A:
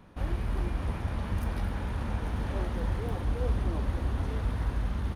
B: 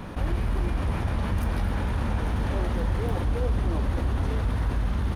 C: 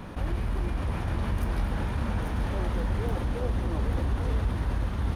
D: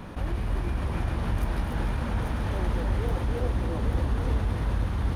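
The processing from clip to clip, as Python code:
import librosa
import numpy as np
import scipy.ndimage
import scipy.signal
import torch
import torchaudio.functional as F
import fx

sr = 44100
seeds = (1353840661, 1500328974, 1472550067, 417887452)

y1 = fx.env_flatten(x, sr, amount_pct=50)
y1 = F.gain(torch.from_numpy(y1), 1.5).numpy()
y2 = y1 + 10.0 ** (-6.5 / 20.0) * np.pad(y1, (int(842 * sr / 1000.0), 0))[:len(y1)]
y2 = F.gain(torch.from_numpy(y2), -3.0).numpy()
y3 = y2 + 10.0 ** (-6.0 / 20.0) * np.pad(y2, (int(291 * sr / 1000.0), 0))[:len(y2)]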